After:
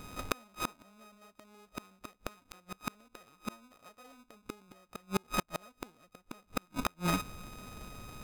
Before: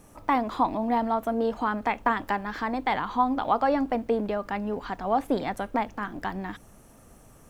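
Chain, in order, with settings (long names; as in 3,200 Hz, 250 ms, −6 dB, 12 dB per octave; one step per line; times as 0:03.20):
samples sorted by size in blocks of 32 samples
change of speed 0.91×
gate with flip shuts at −21 dBFS, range −38 dB
level +5.5 dB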